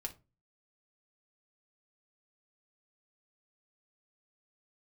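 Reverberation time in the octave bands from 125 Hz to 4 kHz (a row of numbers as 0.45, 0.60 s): 0.50, 0.40, 0.30, 0.25, 0.20, 0.20 s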